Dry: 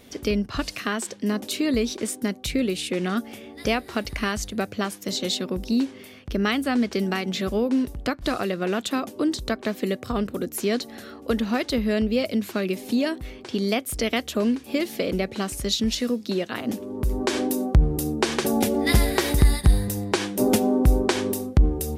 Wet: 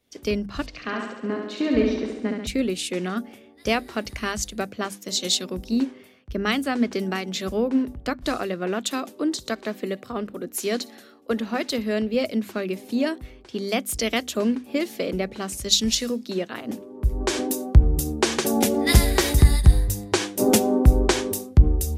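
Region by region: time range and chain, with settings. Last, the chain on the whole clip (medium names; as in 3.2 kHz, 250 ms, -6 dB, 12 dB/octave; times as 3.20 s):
0.66–2.47 s: distance through air 190 m + flutter echo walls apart 11.9 m, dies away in 1.3 s
8.87–12.14 s: high-pass 150 Hz 6 dB/octave + feedback echo behind a high-pass 61 ms, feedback 55%, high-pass 2.3 kHz, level -21 dB
whole clip: hum notches 50/100/150/200/250 Hz; dynamic bell 6.8 kHz, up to +4 dB, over -45 dBFS, Q 1.9; three bands expanded up and down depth 70%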